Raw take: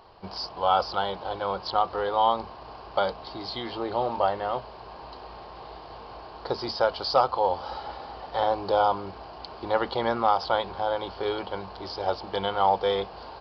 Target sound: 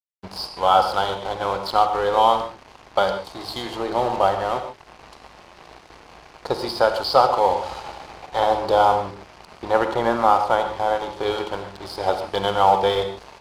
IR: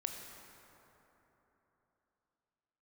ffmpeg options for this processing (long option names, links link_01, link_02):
-filter_complex "[0:a]asettb=1/sr,asplit=3[link_01][link_02][link_03];[link_01]atrim=end=8.854[link_04];[link_02]atrim=start=8.85:end=11.12,asetpts=PTS-STARTPTS,afade=type=in:duration=0.004:curve=qsin,afade=type=out:start_time=2.266:duration=0.004:curve=qsin,acrossover=split=2600[link_05][link_06];[link_06]acompressor=threshold=-47dB:ratio=4:attack=1:release=60[link_07];[link_05][link_07]amix=inputs=2:normalize=0[link_08];[link_03]atrim=start=11.116[link_09];[link_04][link_08]acrossfade=duration=0.004:curve1=hsin:curve2=qsin[link_10];[link_10][link_09]acrossfade=duration=0.004:curve1=qsin:curve2=hsin,aeval=exprs='sgn(val(0))*max(abs(val(0))-0.00891,0)':channel_layout=same[link_11];[1:a]atrim=start_sample=2205,atrim=end_sample=3969,asetrate=25137,aresample=44100[link_12];[link_11][link_12]afir=irnorm=-1:irlink=0,volume=5dB"